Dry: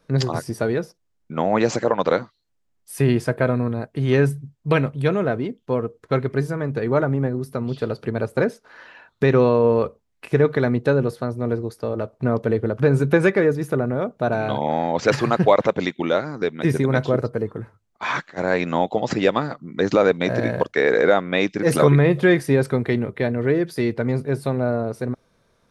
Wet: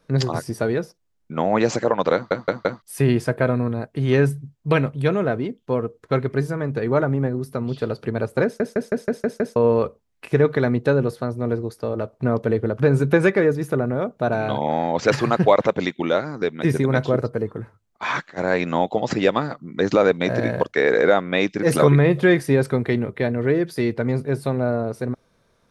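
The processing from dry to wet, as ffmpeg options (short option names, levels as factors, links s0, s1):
-filter_complex "[0:a]asplit=12[s0][s1][s2][s3][s4][s5][s6][s7][s8][s9][s10][s11];[s0]atrim=end=2.312[s12];[s1]atrim=start=2.138:end=2.312[s13];[s2]atrim=start=2.138:end=2.312[s14];[s3]atrim=start=2.138:end=2.312[s15];[s4]atrim=start=2.818:end=8.602[s16];[s5]atrim=start=8.438:end=8.602[s17];[s6]atrim=start=8.438:end=8.602[s18];[s7]atrim=start=8.438:end=8.602[s19];[s8]atrim=start=8.438:end=8.602[s20];[s9]atrim=start=8.438:end=8.602[s21];[s10]atrim=start=8.438:end=8.602[s22];[s11]atrim=start=9.558[s23];[s12][s13]acrossfade=d=0.004:c1=hsin:c2=hsin[s24];[s24][s14]acrossfade=d=0.004:c1=hsin:c2=hsin[s25];[s25][s15]acrossfade=d=0.004:c1=hsin:c2=hsin[s26];[s26][s16]acrossfade=d=0.004:c1=hsin:c2=hsin[s27];[s27][s17]acrossfade=d=0.004:c1=hsin:c2=hsin[s28];[s28][s18]acrossfade=d=0.004:c1=hsin:c2=hsin[s29];[s29][s19]acrossfade=d=0.004:c1=hsin:c2=hsin[s30];[s30][s20]acrossfade=d=0.004:c1=hsin:c2=hsin[s31];[s31][s21]acrossfade=d=0.004:c1=hsin:c2=hsin[s32];[s32][s22]acrossfade=d=0.004:c1=hsin:c2=hsin[s33];[s33][s23]acrossfade=d=0.004:c1=hsin:c2=hsin"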